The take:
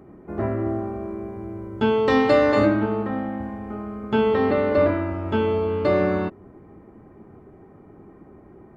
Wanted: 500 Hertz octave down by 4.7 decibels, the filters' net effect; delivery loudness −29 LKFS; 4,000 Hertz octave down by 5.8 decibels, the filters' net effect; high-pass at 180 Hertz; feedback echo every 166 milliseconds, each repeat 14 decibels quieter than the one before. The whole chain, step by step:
high-pass filter 180 Hz
parametric band 500 Hz −5.5 dB
parametric band 4,000 Hz −7.5 dB
repeating echo 166 ms, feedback 20%, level −14 dB
level −3.5 dB

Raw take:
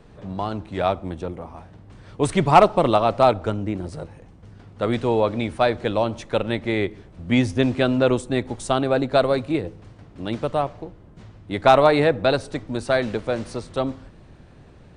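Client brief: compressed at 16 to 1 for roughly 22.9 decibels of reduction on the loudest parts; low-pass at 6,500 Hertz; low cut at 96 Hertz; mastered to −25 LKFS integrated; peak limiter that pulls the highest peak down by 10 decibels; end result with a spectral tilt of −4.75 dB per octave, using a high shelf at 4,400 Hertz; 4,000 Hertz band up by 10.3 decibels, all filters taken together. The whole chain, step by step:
high-pass filter 96 Hz
low-pass filter 6,500 Hz
parametric band 4,000 Hz +8 dB
high-shelf EQ 4,400 Hz +9 dB
downward compressor 16 to 1, threshold −30 dBFS
level +13.5 dB
brickwall limiter −11.5 dBFS

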